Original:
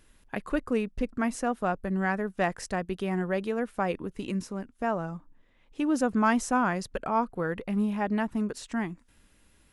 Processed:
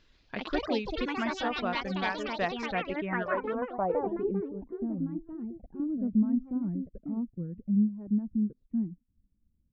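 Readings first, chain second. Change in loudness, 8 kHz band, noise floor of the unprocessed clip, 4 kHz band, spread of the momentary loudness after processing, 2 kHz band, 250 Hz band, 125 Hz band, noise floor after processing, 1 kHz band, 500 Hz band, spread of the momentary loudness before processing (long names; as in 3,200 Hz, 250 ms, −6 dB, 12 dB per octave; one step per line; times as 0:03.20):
−2.0 dB, below −15 dB, −63 dBFS, +4.5 dB, 10 LU, −3.0 dB, −0.5 dB, −2.0 dB, −73 dBFS, −5.0 dB, −2.5 dB, 9 LU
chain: notch filter 810 Hz, Q 12
reverb reduction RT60 1.6 s
delay with pitch and tempo change per echo 121 ms, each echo +4 semitones, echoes 3
low-pass filter sweep 4,400 Hz → 210 Hz, 0:02.41–0:04.88
downsampling to 16,000 Hz
level −4 dB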